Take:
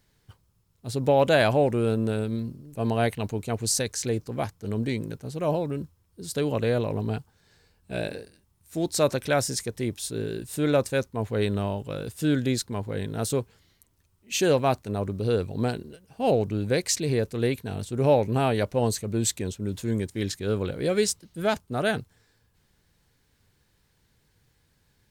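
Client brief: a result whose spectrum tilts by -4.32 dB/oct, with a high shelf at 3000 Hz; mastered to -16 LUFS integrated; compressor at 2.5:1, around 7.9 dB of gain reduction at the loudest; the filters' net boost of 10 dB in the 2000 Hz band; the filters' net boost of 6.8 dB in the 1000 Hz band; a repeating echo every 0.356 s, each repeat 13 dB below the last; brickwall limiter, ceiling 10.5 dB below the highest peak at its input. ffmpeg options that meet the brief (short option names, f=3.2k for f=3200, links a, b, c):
-af "equalizer=f=1k:t=o:g=7,equalizer=f=2k:t=o:g=8.5,highshelf=f=3k:g=6.5,acompressor=threshold=-23dB:ratio=2.5,alimiter=limit=-19.5dB:level=0:latency=1,aecho=1:1:356|712|1068:0.224|0.0493|0.0108,volume=14.5dB"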